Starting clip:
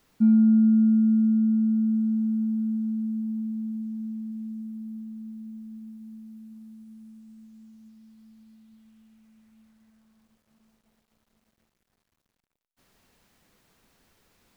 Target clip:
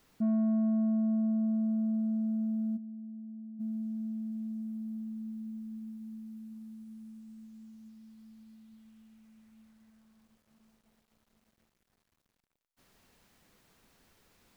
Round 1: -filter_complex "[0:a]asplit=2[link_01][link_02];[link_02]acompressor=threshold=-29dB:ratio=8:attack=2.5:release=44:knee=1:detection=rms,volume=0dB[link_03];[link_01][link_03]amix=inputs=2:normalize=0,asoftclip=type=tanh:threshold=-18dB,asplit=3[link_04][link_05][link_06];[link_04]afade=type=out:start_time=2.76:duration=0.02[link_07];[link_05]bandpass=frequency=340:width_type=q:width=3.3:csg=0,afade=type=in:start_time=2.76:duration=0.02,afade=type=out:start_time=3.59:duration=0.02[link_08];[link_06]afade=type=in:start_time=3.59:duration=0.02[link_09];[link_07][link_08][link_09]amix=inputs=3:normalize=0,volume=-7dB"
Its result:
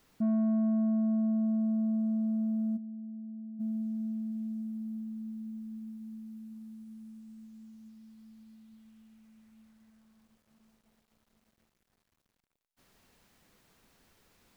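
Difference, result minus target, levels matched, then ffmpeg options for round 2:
downward compressor: peak gain reduction −5.5 dB
-filter_complex "[0:a]asplit=2[link_01][link_02];[link_02]acompressor=threshold=-35.5dB:ratio=8:attack=2.5:release=44:knee=1:detection=rms,volume=0dB[link_03];[link_01][link_03]amix=inputs=2:normalize=0,asoftclip=type=tanh:threshold=-18dB,asplit=3[link_04][link_05][link_06];[link_04]afade=type=out:start_time=2.76:duration=0.02[link_07];[link_05]bandpass=frequency=340:width_type=q:width=3.3:csg=0,afade=type=in:start_time=2.76:duration=0.02,afade=type=out:start_time=3.59:duration=0.02[link_08];[link_06]afade=type=in:start_time=3.59:duration=0.02[link_09];[link_07][link_08][link_09]amix=inputs=3:normalize=0,volume=-7dB"

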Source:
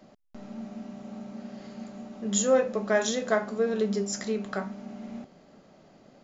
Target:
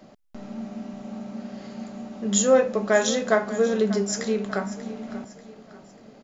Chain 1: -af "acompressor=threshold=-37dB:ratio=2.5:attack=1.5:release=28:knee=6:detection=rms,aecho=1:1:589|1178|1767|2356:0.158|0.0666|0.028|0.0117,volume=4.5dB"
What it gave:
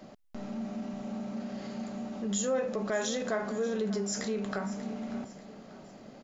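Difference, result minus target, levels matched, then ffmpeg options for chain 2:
downward compressor: peak gain reduction +13.5 dB
-af "aecho=1:1:589|1178|1767|2356:0.158|0.0666|0.028|0.0117,volume=4.5dB"

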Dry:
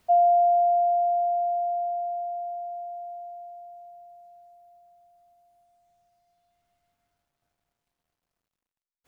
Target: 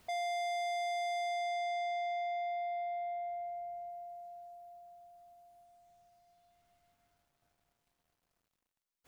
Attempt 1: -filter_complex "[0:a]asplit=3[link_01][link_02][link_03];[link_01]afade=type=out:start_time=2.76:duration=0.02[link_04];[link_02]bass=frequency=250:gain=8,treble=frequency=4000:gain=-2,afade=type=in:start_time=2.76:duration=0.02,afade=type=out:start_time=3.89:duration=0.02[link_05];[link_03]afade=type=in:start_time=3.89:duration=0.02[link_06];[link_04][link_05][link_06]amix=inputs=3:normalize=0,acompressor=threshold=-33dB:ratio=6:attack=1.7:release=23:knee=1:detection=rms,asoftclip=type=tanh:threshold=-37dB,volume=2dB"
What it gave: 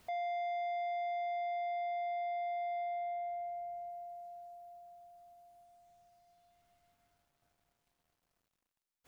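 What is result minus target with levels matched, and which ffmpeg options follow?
downward compressor: peak gain reduction +9.5 dB
-filter_complex "[0:a]asplit=3[link_01][link_02][link_03];[link_01]afade=type=out:start_time=2.76:duration=0.02[link_04];[link_02]bass=frequency=250:gain=8,treble=frequency=4000:gain=-2,afade=type=in:start_time=2.76:duration=0.02,afade=type=out:start_time=3.89:duration=0.02[link_05];[link_03]afade=type=in:start_time=3.89:duration=0.02[link_06];[link_04][link_05][link_06]amix=inputs=3:normalize=0,acompressor=threshold=-21.5dB:ratio=6:attack=1.7:release=23:knee=1:detection=rms,asoftclip=type=tanh:threshold=-37dB,volume=2dB"

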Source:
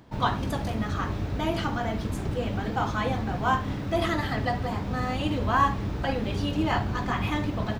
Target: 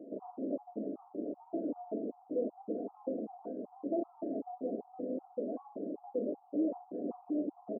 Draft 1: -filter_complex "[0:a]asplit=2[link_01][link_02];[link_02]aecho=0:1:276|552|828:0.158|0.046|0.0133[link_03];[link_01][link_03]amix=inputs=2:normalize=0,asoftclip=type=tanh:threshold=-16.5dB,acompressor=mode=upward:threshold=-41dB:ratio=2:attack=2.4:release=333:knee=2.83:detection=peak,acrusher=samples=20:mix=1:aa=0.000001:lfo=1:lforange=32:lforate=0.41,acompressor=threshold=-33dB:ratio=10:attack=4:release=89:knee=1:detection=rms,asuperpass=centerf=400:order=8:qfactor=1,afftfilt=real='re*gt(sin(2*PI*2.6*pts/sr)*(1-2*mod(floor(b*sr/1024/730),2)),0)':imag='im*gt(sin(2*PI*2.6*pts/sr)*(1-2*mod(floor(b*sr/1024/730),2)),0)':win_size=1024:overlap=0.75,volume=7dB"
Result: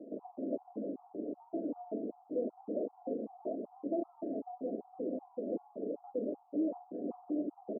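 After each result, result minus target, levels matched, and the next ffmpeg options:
soft clipping: distortion −9 dB; sample-and-hold swept by an LFO: distortion +9 dB
-filter_complex "[0:a]asplit=2[link_01][link_02];[link_02]aecho=0:1:276|552|828:0.158|0.046|0.0133[link_03];[link_01][link_03]amix=inputs=2:normalize=0,asoftclip=type=tanh:threshold=-25dB,acompressor=mode=upward:threshold=-41dB:ratio=2:attack=2.4:release=333:knee=2.83:detection=peak,acrusher=samples=20:mix=1:aa=0.000001:lfo=1:lforange=32:lforate=0.41,acompressor=threshold=-33dB:ratio=10:attack=4:release=89:knee=1:detection=rms,asuperpass=centerf=400:order=8:qfactor=1,afftfilt=real='re*gt(sin(2*PI*2.6*pts/sr)*(1-2*mod(floor(b*sr/1024/730),2)),0)':imag='im*gt(sin(2*PI*2.6*pts/sr)*(1-2*mod(floor(b*sr/1024/730),2)),0)':win_size=1024:overlap=0.75,volume=7dB"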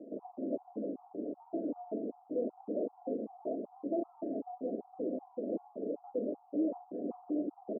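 sample-and-hold swept by an LFO: distortion +8 dB
-filter_complex "[0:a]asplit=2[link_01][link_02];[link_02]aecho=0:1:276|552|828:0.158|0.046|0.0133[link_03];[link_01][link_03]amix=inputs=2:normalize=0,asoftclip=type=tanh:threshold=-25dB,acompressor=mode=upward:threshold=-41dB:ratio=2:attack=2.4:release=333:knee=2.83:detection=peak,acrusher=samples=6:mix=1:aa=0.000001:lfo=1:lforange=9.6:lforate=0.41,acompressor=threshold=-33dB:ratio=10:attack=4:release=89:knee=1:detection=rms,asuperpass=centerf=400:order=8:qfactor=1,afftfilt=real='re*gt(sin(2*PI*2.6*pts/sr)*(1-2*mod(floor(b*sr/1024/730),2)),0)':imag='im*gt(sin(2*PI*2.6*pts/sr)*(1-2*mod(floor(b*sr/1024/730),2)),0)':win_size=1024:overlap=0.75,volume=7dB"

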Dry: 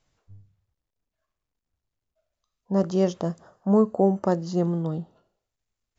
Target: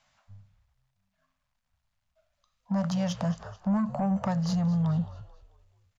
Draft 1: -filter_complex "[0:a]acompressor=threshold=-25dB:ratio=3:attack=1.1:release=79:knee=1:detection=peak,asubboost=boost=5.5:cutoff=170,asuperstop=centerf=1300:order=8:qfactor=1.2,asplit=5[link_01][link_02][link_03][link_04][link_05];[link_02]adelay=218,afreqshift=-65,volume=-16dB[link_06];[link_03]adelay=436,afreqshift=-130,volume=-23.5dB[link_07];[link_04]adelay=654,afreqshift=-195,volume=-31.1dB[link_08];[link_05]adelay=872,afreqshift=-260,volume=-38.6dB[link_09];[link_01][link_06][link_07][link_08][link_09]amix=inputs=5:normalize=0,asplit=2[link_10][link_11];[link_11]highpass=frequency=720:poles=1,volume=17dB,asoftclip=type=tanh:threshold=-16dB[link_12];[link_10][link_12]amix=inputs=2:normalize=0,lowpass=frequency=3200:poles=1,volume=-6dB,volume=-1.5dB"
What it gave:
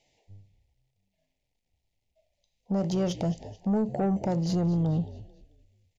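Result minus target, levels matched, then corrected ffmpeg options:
500 Hz band +5.5 dB
-filter_complex "[0:a]acompressor=threshold=-25dB:ratio=3:attack=1.1:release=79:knee=1:detection=peak,asubboost=boost=5.5:cutoff=170,asuperstop=centerf=380:order=8:qfactor=1.2,asplit=5[link_01][link_02][link_03][link_04][link_05];[link_02]adelay=218,afreqshift=-65,volume=-16dB[link_06];[link_03]adelay=436,afreqshift=-130,volume=-23.5dB[link_07];[link_04]adelay=654,afreqshift=-195,volume=-31.1dB[link_08];[link_05]adelay=872,afreqshift=-260,volume=-38.6dB[link_09];[link_01][link_06][link_07][link_08][link_09]amix=inputs=5:normalize=0,asplit=2[link_10][link_11];[link_11]highpass=frequency=720:poles=1,volume=17dB,asoftclip=type=tanh:threshold=-16dB[link_12];[link_10][link_12]amix=inputs=2:normalize=0,lowpass=frequency=3200:poles=1,volume=-6dB,volume=-1.5dB"

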